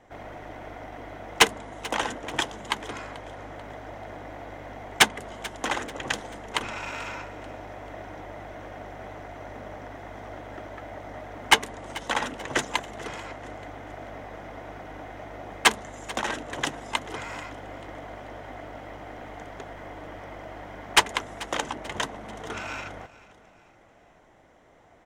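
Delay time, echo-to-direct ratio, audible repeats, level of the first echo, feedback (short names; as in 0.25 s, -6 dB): 0.438 s, -18.0 dB, 3, -19.0 dB, 43%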